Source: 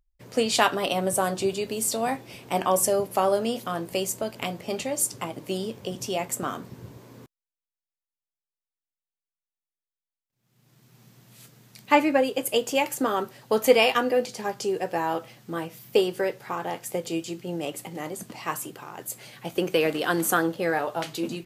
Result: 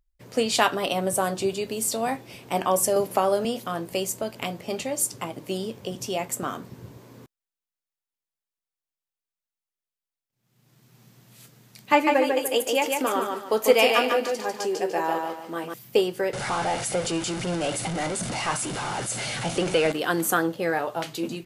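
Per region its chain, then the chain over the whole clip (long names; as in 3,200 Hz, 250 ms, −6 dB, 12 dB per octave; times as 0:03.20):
0:02.96–0:03.45: high-pass filter 99 Hz + multiband upward and downward compressor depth 70%
0:11.92–0:15.74: high-pass filter 250 Hz + repeating echo 147 ms, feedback 33%, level −4 dB
0:16.33–0:19.92: converter with a step at zero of −26 dBFS + linear-phase brick-wall low-pass 11,000 Hz + comb filter 1.4 ms, depth 30%
whole clip: no processing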